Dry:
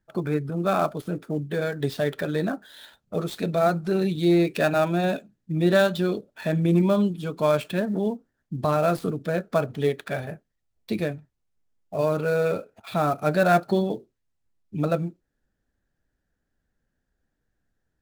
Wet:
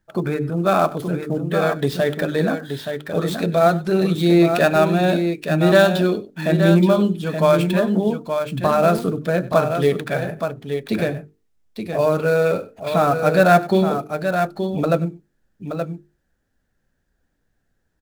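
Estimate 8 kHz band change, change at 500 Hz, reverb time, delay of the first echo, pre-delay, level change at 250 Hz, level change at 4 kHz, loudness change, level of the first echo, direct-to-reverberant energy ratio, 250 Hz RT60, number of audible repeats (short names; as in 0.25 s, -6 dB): +7.0 dB, +6.5 dB, none, 96 ms, none, +6.0 dB, +7.0 dB, +6.0 dB, -19.0 dB, none, none, 2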